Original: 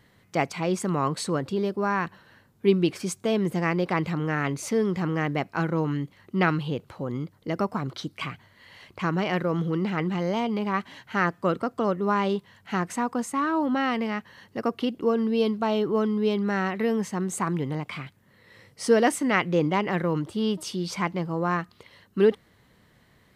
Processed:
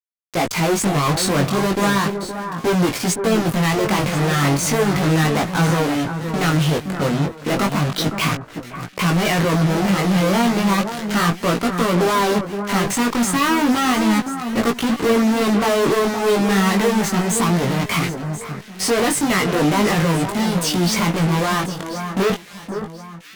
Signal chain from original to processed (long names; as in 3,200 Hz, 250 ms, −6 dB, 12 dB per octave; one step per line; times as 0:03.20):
automatic gain control gain up to 6.5 dB
fuzz pedal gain 41 dB, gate −33 dBFS
brickwall limiter −17 dBFS, peak gain reduction 6.5 dB
delay that swaps between a low-pass and a high-pass 518 ms, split 1,700 Hz, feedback 52%, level −8 dB
chorus effect 0.34 Hz, delay 17 ms, depth 4.4 ms
level +5 dB